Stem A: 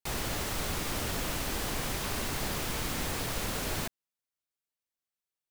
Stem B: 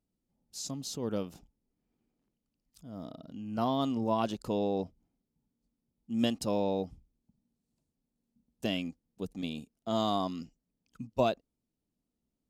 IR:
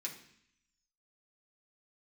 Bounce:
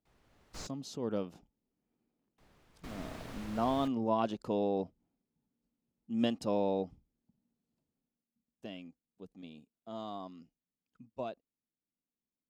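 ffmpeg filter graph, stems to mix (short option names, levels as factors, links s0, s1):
-filter_complex "[0:a]dynaudnorm=f=220:g=3:m=1.58,volume=0.178,asplit=3[s0][s1][s2];[s0]atrim=end=0.67,asetpts=PTS-STARTPTS,afade=t=out:st=0.666:d=0.004:c=hsin[s3];[s1]atrim=start=0.67:end=2.38,asetpts=PTS-STARTPTS,volume=0[s4];[s2]atrim=start=2.38,asetpts=PTS-STARTPTS,afade=t=in:d=0.004:c=hsin[s5];[s3][s4][s5]concat=n=3:v=0:a=1[s6];[1:a]lowshelf=f=99:g=-11.5,afade=t=out:st=7.99:d=0.26:silence=0.281838,asplit=2[s7][s8];[s8]apad=whole_len=242717[s9];[s6][s9]sidechaingate=range=0.1:threshold=0.00158:ratio=16:detection=peak[s10];[s10][s7]amix=inputs=2:normalize=0,lowpass=f=2300:p=1"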